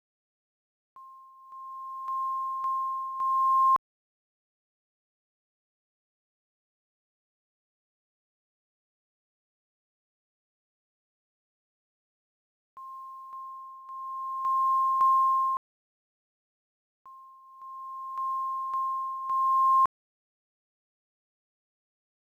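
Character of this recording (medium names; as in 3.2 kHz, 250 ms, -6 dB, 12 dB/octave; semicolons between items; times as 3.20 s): a quantiser's noise floor 12-bit, dither none; tremolo triangle 0.56 Hz, depth 75%; IMA ADPCM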